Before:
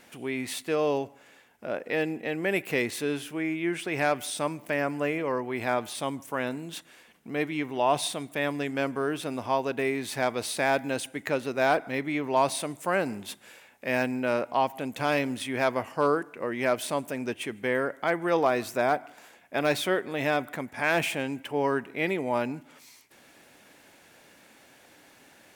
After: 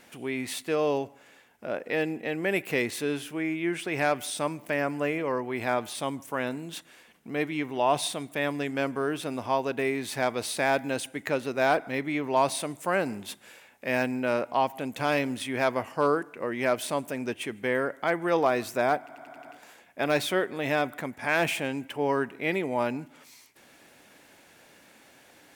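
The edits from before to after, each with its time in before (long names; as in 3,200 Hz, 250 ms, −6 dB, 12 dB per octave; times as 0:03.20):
0:19.00: stutter 0.09 s, 6 plays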